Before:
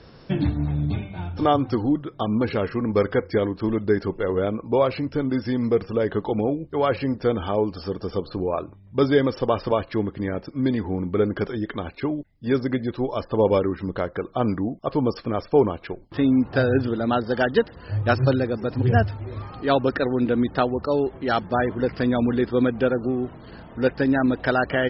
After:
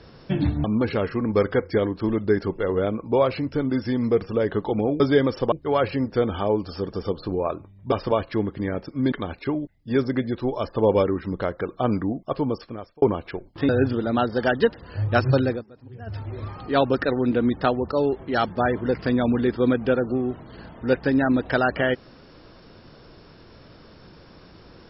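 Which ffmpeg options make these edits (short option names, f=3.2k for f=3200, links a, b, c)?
-filter_complex "[0:a]asplit=10[a][b][c][d][e][f][g][h][i][j];[a]atrim=end=0.642[k];[b]atrim=start=2.238:end=6.602[l];[c]atrim=start=8.998:end=9.522[m];[d]atrim=start=6.598:end=9.002[n];[e]atrim=start=9.518:end=10.722[o];[f]atrim=start=11.678:end=15.58,asetpts=PTS-STARTPTS,afade=t=out:st=3.142:d=0.76[p];[g]atrim=start=15.58:end=16.252,asetpts=PTS-STARTPTS,afade=t=in:d=0.004:c=hsin[q];[h]atrim=start=16.628:end=18.58,asetpts=PTS-STARTPTS,afade=t=out:st=1.832:d=0.12:silence=0.0841395[r];[i]atrim=start=18.58:end=19,asetpts=PTS-STARTPTS,volume=-21.5dB[s];[j]atrim=start=19,asetpts=PTS-STARTPTS,afade=t=in:d=0.12:silence=0.0841395[t];[k][l]acrossfade=d=0.004:c1=hsin:c2=hsin[u];[u][m]acrossfade=d=0.004:c1=hsin:c2=hsin[v];[v][n]acrossfade=d=0.004:c1=hsin:c2=hsin[w];[w][o]acrossfade=d=0.004:c1=hsin:c2=hsin[x];[p][q]concat=n=2:v=0:a=1[y];[x][y]acrossfade=d=0.004:c1=hsin:c2=hsin[z];[r][s][t]concat=n=3:v=0:a=1[aa];[z][aa]acrossfade=d=0.004:c1=hsin:c2=hsin"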